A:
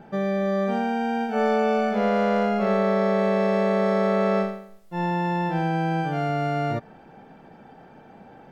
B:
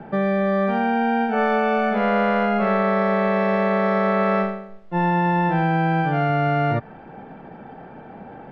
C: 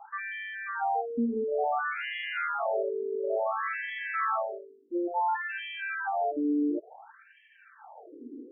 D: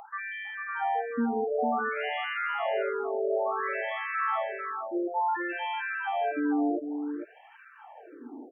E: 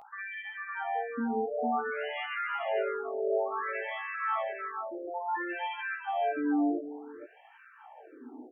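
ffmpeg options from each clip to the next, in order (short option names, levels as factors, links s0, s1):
-filter_complex "[0:a]lowpass=2400,acrossover=split=140|900|1400[s0][s1][s2][s3];[s1]alimiter=level_in=1.06:limit=0.0631:level=0:latency=1:release=396,volume=0.944[s4];[s0][s4][s2][s3]amix=inputs=4:normalize=0,volume=2.51"
-af "equalizer=f=125:t=o:w=1:g=-8,equalizer=f=250:t=o:w=1:g=6,equalizer=f=500:t=o:w=1:g=-11,equalizer=f=1000:t=o:w=1:g=-4,equalizer=f=2000:t=o:w=1:g=-7,equalizer=f=4000:t=o:w=1:g=5,afftfilt=real='re*between(b*sr/1024,330*pow(2400/330,0.5+0.5*sin(2*PI*0.57*pts/sr))/1.41,330*pow(2400/330,0.5+0.5*sin(2*PI*0.57*pts/sr))*1.41)':imag='im*between(b*sr/1024,330*pow(2400/330,0.5+0.5*sin(2*PI*0.57*pts/sr))/1.41,330*pow(2400/330,0.5+0.5*sin(2*PI*0.57*pts/sr))*1.41)':win_size=1024:overlap=0.75,volume=1.58"
-af "aecho=1:1:450:0.473,acompressor=mode=upward:threshold=0.00447:ratio=2.5"
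-af "flanger=delay=15.5:depth=3.3:speed=0.49"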